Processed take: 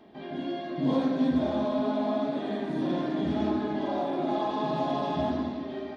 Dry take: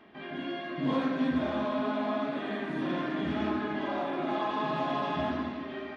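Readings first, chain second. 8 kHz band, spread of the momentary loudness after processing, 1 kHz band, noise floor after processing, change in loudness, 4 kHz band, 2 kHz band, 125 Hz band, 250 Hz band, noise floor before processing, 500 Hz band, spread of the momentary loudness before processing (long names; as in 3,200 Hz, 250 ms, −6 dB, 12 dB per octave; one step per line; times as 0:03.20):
can't be measured, 8 LU, +1.0 dB, −39 dBFS, +2.5 dB, 0.0 dB, −6.0 dB, +3.5 dB, +3.5 dB, −41 dBFS, +3.5 dB, 7 LU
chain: flat-topped bell 1,800 Hz −9.5 dB
level +3.5 dB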